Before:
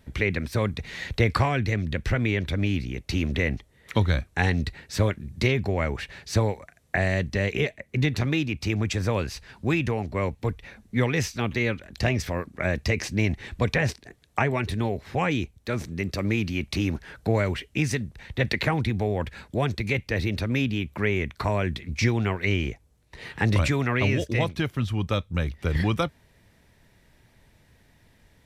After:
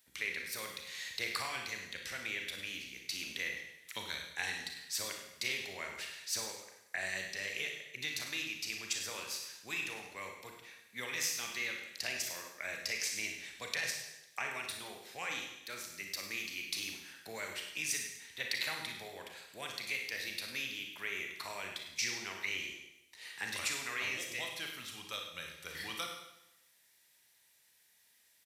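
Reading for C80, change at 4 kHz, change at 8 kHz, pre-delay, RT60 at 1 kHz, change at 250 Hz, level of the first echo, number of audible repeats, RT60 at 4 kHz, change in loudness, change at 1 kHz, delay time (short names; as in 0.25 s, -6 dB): 6.0 dB, -3.5 dB, +1.5 dB, 31 ms, 0.90 s, -26.5 dB, -12.0 dB, 1, 0.90 s, -12.0 dB, -15.0 dB, 0.101 s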